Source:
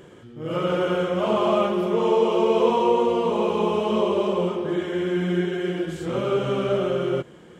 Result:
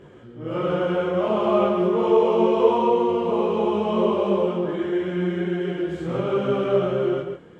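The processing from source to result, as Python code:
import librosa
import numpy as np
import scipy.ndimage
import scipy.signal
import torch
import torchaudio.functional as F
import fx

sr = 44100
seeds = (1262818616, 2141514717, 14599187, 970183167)

p1 = fx.lowpass(x, sr, hz=2100.0, slope=6)
p2 = p1 + fx.echo_single(p1, sr, ms=136, db=-7.5, dry=0)
p3 = fx.detune_double(p2, sr, cents=16)
y = p3 * librosa.db_to_amplitude(4.0)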